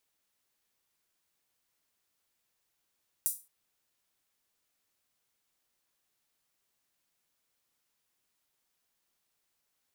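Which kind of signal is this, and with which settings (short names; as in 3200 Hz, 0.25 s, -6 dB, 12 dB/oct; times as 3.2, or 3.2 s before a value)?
open hi-hat length 0.22 s, high-pass 9100 Hz, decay 0.29 s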